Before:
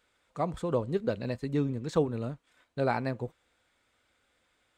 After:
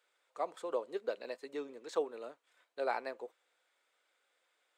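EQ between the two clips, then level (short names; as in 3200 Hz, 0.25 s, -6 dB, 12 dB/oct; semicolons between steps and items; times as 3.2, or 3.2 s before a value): HPF 400 Hz 24 dB/oct; -5.0 dB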